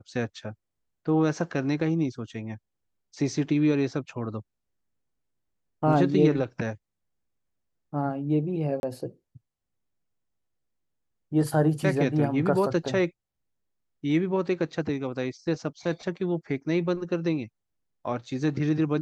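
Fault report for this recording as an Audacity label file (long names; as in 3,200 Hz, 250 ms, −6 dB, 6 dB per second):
8.800000	8.830000	drop-out 31 ms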